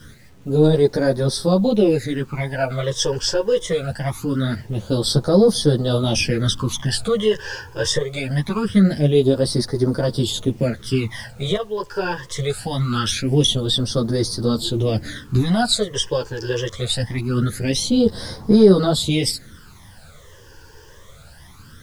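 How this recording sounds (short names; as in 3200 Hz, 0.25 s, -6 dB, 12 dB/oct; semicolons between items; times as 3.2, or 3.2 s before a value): phasing stages 12, 0.23 Hz, lowest notch 210–2700 Hz; a quantiser's noise floor 10-bit, dither none; a shimmering, thickened sound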